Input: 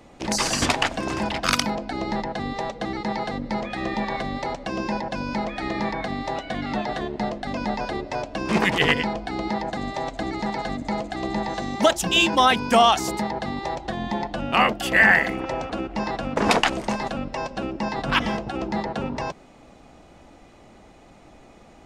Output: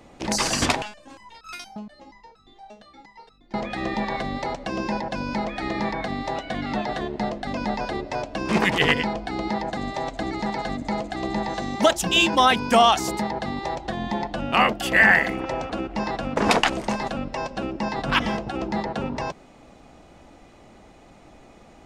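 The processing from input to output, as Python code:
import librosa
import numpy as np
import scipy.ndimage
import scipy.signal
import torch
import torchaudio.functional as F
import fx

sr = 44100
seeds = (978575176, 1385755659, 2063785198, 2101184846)

y = fx.resonator_held(x, sr, hz=8.5, low_hz=210.0, high_hz=1300.0, at=(0.82, 3.54))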